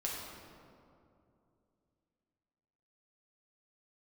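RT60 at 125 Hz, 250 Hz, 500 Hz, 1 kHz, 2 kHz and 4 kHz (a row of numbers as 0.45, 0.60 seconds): 3.3, 3.2, 2.9, 2.4, 1.7, 1.2 seconds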